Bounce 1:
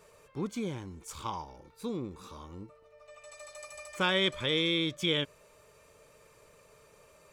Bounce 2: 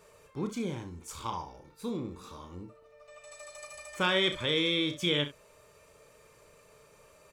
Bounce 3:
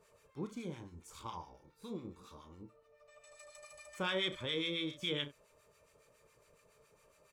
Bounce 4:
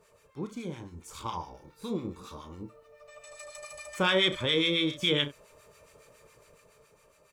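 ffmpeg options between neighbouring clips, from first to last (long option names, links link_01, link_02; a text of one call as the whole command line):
ffmpeg -i in.wav -af "aecho=1:1:34|69:0.376|0.224" out.wav
ffmpeg -i in.wav -filter_complex "[0:a]acrossover=split=1100[link_01][link_02];[link_01]aeval=exprs='val(0)*(1-0.7/2+0.7/2*cos(2*PI*7.2*n/s))':channel_layout=same[link_03];[link_02]aeval=exprs='val(0)*(1-0.7/2-0.7/2*cos(2*PI*7.2*n/s))':channel_layout=same[link_04];[link_03][link_04]amix=inputs=2:normalize=0,volume=-5.5dB" out.wav
ffmpeg -i in.wav -af "dynaudnorm=framelen=240:gausssize=9:maxgain=6dB,volume=4.5dB" out.wav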